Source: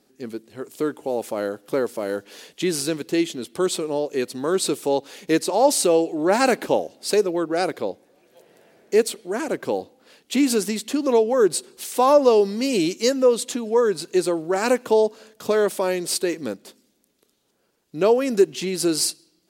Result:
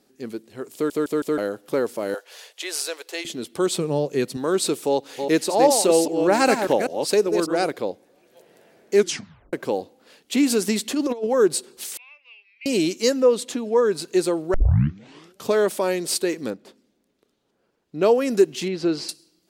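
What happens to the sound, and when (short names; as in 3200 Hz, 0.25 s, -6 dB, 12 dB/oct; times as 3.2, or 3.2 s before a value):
0.74 stutter in place 0.16 s, 4 plays
2.14–3.25 inverse Chebyshev high-pass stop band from 200 Hz, stop band 50 dB
3.78–4.37 bell 150 Hz +13.5 dB
4.89–7.66 reverse delay 0.198 s, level -6 dB
8.94 tape stop 0.59 s
10.68–11.27 negative-ratio compressor -22 dBFS, ratio -0.5
11.97–12.66 Butterworth band-pass 2400 Hz, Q 5.5
13.2–13.91 high shelf 4700 Hz -5.5 dB
14.54 tape start 0.93 s
16.5–18.03 LPF 2200 Hz 6 dB/oct
18.68–19.09 air absorption 210 m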